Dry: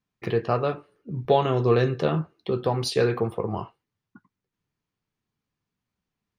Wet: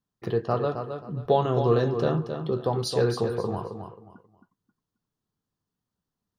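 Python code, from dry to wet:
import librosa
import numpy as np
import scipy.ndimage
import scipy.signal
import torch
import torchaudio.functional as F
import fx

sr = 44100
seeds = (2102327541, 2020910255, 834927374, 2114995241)

p1 = fx.peak_eq(x, sr, hz=2300.0, db=-13.5, octaves=0.58)
p2 = p1 + fx.echo_feedback(p1, sr, ms=267, feedback_pct=26, wet_db=-7.5, dry=0)
y = F.gain(torch.from_numpy(p2), -1.5).numpy()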